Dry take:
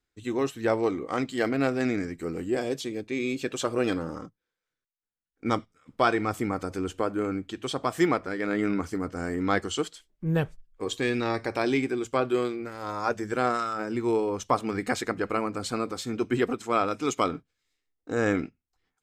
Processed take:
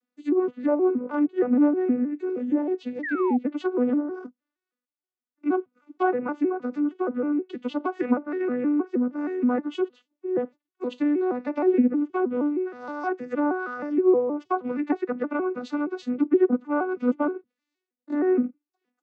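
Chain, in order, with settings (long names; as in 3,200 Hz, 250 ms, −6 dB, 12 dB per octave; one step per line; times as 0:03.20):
vocoder with an arpeggio as carrier minor triad, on B3, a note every 157 ms
sound drawn into the spectrogram fall, 0:03.03–0:03.37, 730–2,000 Hz −35 dBFS
treble cut that deepens with the level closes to 1,200 Hz, closed at −25.5 dBFS
level +4.5 dB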